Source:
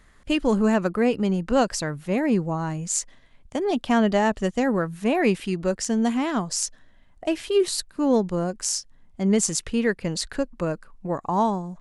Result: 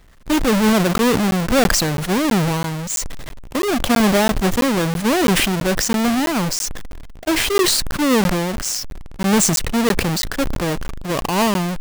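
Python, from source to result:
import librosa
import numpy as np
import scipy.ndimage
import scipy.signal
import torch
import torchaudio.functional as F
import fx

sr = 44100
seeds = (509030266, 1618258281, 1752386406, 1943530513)

y = fx.halfwave_hold(x, sr)
y = fx.buffer_crackle(y, sr, first_s=0.98, period_s=0.33, block=512, kind='zero')
y = fx.sustainer(y, sr, db_per_s=26.0)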